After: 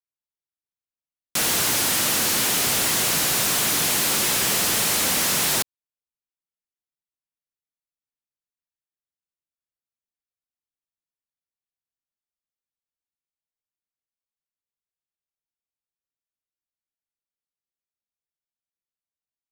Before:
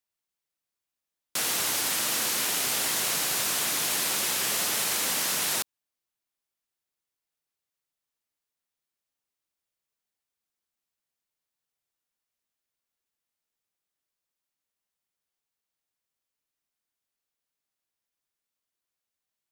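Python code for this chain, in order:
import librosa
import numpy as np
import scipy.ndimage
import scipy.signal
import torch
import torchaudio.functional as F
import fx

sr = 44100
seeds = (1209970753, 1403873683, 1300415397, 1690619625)

y = fx.low_shelf(x, sr, hz=260.0, db=9.5)
y = fx.leveller(y, sr, passes=5)
y = y * librosa.db_to_amplitude(-4.5)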